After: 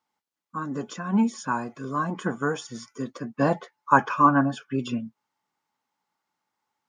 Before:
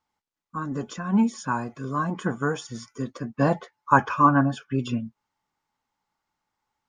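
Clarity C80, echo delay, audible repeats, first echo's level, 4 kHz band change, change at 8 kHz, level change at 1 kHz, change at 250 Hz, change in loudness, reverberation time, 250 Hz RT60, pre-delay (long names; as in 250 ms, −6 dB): no reverb audible, no echo audible, no echo audible, no echo audible, 0.0 dB, 0.0 dB, 0.0 dB, −1.0 dB, −0.5 dB, no reverb audible, no reverb audible, no reverb audible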